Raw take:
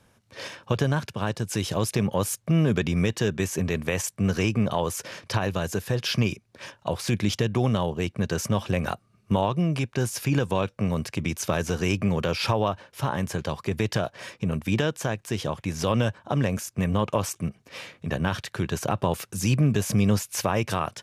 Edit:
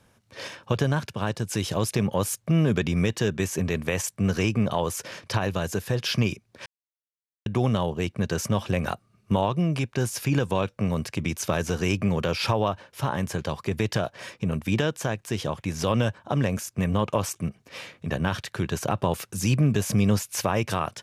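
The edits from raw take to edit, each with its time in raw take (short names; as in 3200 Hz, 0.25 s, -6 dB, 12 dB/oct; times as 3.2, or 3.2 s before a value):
6.66–7.46 mute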